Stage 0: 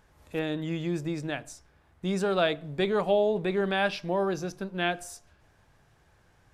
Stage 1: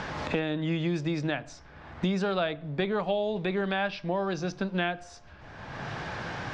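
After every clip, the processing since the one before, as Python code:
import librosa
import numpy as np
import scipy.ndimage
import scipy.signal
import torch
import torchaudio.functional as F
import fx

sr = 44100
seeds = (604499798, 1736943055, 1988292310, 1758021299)

y = scipy.signal.sosfilt(scipy.signal.butter(4, 5300.0, 'lowpass', fs=sr, output='sos'), x)
y = fx.peak_eq(y, sr, hz=400.0, db=-4.0, octaves=0.67)
y = fx.band_squash(y, sr, depth_pct=100)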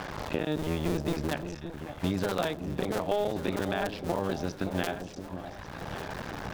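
y = fx.cycle_switch(x, sr, every=2, mode='muted')
y = fx.dynamic_eq(y, sr, hz=2200.0, q=0.75, threshold_db=-47.0, ratio=4.0, max_db=-4)
y = fx.echo_alternate(y, sr, ms=572, hz=890.0, feedback_pct=68, wet_db=-8.5)
y = F.gain(torch.from_numpy(y), 1.5).numpy()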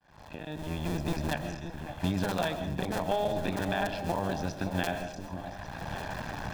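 y = fx.fade_in_head(x, sr, length_s=1.14)
y = y + 0.43 * np.pad(y, (int(1.2 * sr / 1000.0), 0))[:len(y)]
y = fx.rev_freeverb(y, sr, rt60_s=0.49, hf_ratio=0.6, predelay_ms=90, drr_db=9.0)
y = F.gain(torch.from_numpy(y), -1.0).numpy()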